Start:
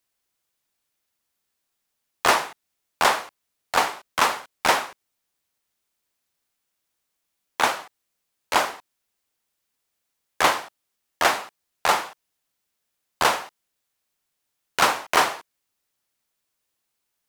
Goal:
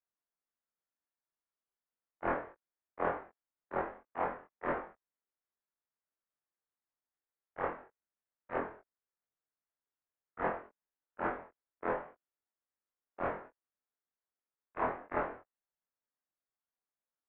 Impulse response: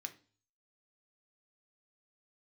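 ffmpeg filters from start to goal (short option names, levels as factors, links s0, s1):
-af "afftfilt=real='re':imag='-im':win_size=2048:overlap=0.75,highpass=f=390:t=q:w=0.5412,highpass=f=390:t=q:w=1.307,lowpass=f=2200:t=q:w=0.5176,lowpass=f=2200:t=q:w=0.7071,lowpass=f=2200:t=q:w=1.932,afreqshift=-350,equalizer=f=130:t=o:w=1.5:g=-5.5,volume=0.355"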